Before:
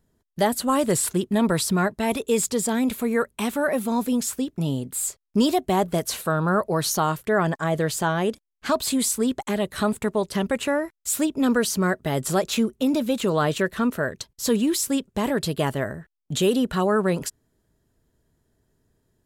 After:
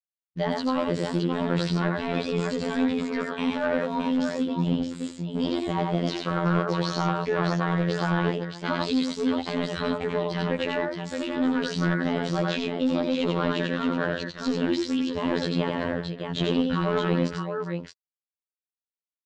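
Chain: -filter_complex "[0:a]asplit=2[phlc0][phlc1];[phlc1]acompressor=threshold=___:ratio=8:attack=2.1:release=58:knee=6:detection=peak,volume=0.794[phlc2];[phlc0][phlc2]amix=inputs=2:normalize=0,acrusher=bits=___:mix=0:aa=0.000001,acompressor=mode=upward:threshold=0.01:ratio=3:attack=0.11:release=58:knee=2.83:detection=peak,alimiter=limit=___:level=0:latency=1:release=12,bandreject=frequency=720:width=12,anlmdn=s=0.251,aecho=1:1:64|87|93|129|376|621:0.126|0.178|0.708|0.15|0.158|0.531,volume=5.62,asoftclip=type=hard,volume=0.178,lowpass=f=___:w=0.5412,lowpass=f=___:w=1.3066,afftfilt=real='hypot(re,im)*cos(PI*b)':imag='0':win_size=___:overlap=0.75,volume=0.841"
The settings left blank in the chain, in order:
0.0316, 7, 0.237, 4400, 4400, 2048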